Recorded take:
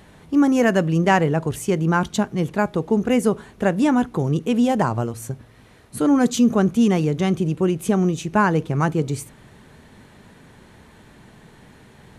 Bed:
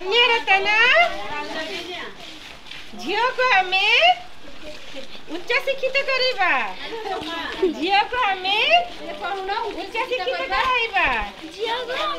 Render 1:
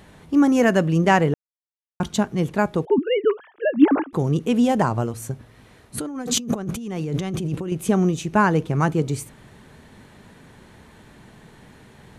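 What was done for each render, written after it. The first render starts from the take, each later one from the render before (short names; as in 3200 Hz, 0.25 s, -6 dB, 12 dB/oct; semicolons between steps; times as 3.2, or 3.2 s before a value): 1.34–2 mute; 2.85–4.13 sine-wave speech; 5.98–7.72 negative-ratio compressor -27 dBFS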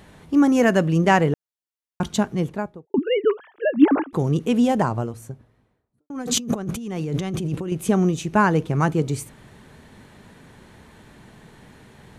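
2.26–2.94 studio fade out; 4.53–6.1 studio fade out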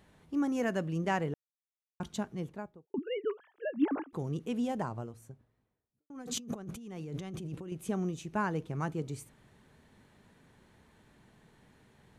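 gain -14.5 dB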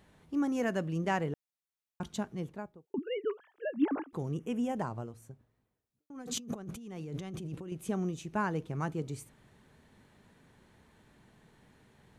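4.33–4.76 Butterworth band-stop 4200 Hz, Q 1.8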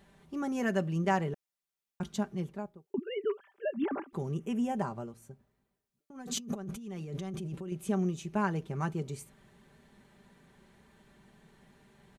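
comb 5.1 ms, depth 54%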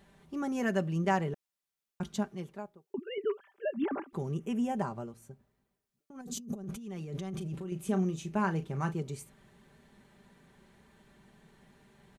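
2.28–3.18 low shelf 270 Hz -8.5 dB; 6.21–6.64 bell 1800 Hz -13.5 dB 2.7 oct; 7.29–8.98 doubler 37 ms -11 dB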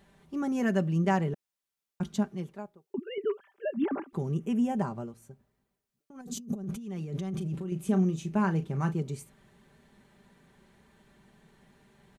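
dynamic EQ 190 Hz, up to +5 dB, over -44 dBFS, Q 0.75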